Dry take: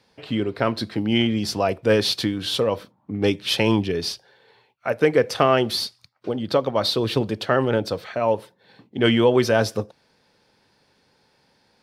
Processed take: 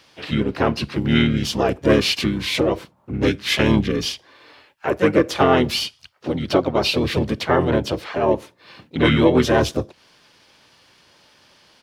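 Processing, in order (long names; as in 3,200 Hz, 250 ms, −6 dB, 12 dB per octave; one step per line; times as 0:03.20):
pitch-shifted copies added −7 semitones 0 dB, +3 semitones −7 dB
one half of a high-frequency compander encoder only
level −1 dB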